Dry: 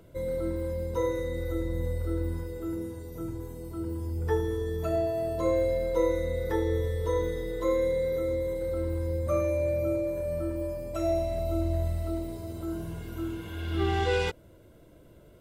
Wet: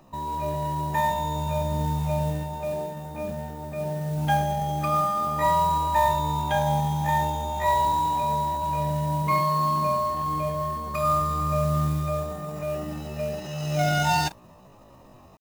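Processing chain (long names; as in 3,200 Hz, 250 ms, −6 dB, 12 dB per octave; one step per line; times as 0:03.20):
automatic gain control gain up to 4 dB
pitch shifter +10.5 semitones
noise that follows the level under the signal 22 dB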